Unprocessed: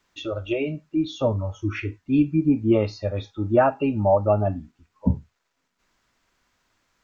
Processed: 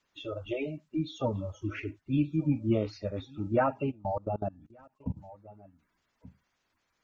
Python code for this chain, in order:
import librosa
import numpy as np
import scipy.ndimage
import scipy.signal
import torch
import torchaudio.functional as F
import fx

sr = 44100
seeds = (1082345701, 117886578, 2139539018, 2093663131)

y = fx.spec_quant(x, sr, step_db=30)
y = y + 10.0 ** (-23.0 / 20.0) * np.pad(y, (int(1178 * sr / 1000.0), 0))[:len(y)]
y = fx.level_steps(y, sr, step_db=23, at=(3.9, 5.16), fade=0.02)
y = F.gain(torch.from_numpy(y), -7.5).numpy()